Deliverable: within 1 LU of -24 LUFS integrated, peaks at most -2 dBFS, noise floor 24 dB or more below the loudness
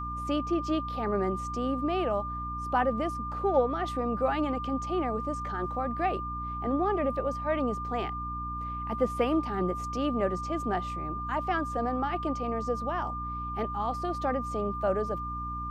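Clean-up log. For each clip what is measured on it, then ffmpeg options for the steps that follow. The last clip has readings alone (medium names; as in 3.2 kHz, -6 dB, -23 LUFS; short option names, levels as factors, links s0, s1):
hum 60 Hz; highest harmonic 300 Hz; hum level -37 dBFS; steady tone 1.2 kHz; tone level -34 dBFS; loudness -30.5 LUFS; peak level -12.5 dBFS; loudness target -24.0 LUFS
-> -af "bandreject=f=60:t=h:w=4,bandreject=f=120:t=h:w=4,bandreject=f=180:t=h:w=4,bandreject=f=240:t=h:w=4,bandreject=f=300:t=h:w=4"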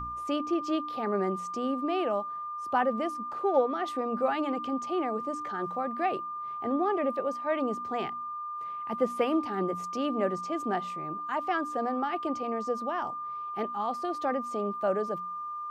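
hum not found; steady tone 1.2 kHz; tone level -34 dBFS
-> -af "bandreject=f=1200:w=30"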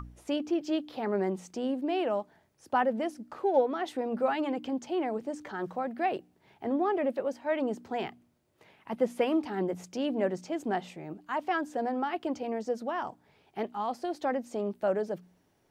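steady tone not found; loudness -32.0 LUFS; peak level -13.5 dBFS; loudness target -24.0 LUFS
-> -af "volume=2.51"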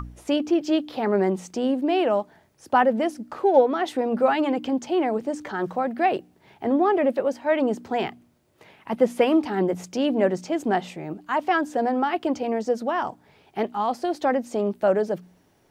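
loudness -24.0 LUFS; peak level -5.5 dBFS; noise floor -61 dBFS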